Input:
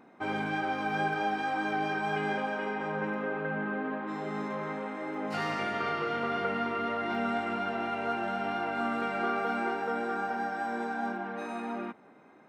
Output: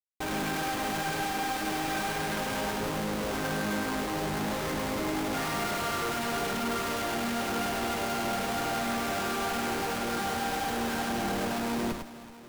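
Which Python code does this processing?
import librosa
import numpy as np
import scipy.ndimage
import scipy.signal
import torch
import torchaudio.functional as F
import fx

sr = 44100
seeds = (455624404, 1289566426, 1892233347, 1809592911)

y = fx.moving_average(x, sr, points=20, at=(2.76, 3.34))
y = fx.schmitt(y, sr, flips_db=-41.5)
y = fx.echo_multitap(y, sr, ms=(102, 377, 647), db=(-4.0, -16.0, -16.0))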